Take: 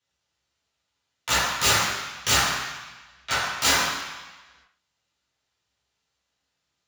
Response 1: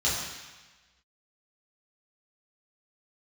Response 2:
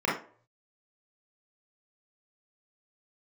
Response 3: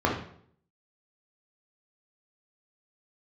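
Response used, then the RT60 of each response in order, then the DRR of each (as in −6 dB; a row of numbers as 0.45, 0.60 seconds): 1; 1.2 s, non-exponential decay, 0.60 s; −9.0, −6.0, −2.0 decibels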